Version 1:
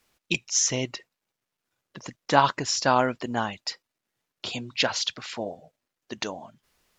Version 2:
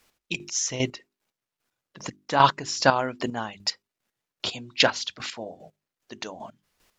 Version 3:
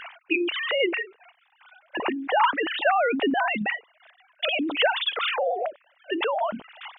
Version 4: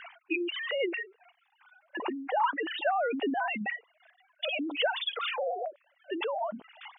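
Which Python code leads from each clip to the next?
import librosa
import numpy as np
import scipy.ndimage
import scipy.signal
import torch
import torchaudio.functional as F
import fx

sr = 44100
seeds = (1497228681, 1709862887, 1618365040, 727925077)

y1 = fx.hum_notches(x, sr, base_hz=50, count=8)
y1 = fx.chopper(y1, sr, hz=2.5, depth_pct=65, duty_pct=25)
y1 = y1 * 10.0 ** (5.0 / 20.0)
y2 = fx.sine_speech(y1, sr)
y2 = fx.env_flatten(y2, sr, amount_pct=70)
y2 = y2 * 10.0 ** (-6.0 / 20.0)
y3 = fx.spec_expand(y2, sr, power=1.7)
y3 = y3 * 10.0 ** (-6.5 / 20.0)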